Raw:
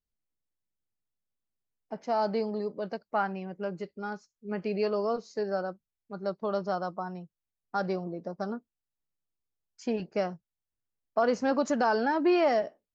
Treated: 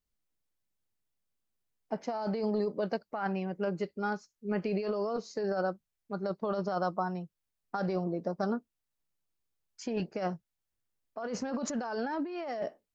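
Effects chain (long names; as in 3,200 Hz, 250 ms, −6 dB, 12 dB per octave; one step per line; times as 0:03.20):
compressor whose output falls as the input rises −32 dBFS, ratio −1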